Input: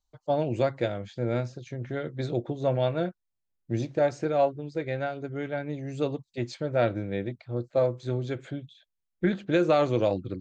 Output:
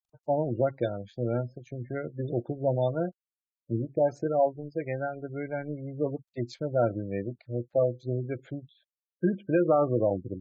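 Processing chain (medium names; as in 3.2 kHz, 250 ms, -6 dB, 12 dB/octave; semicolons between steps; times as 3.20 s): companding laws mixed up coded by A; spectral gate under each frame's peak -20 dB strong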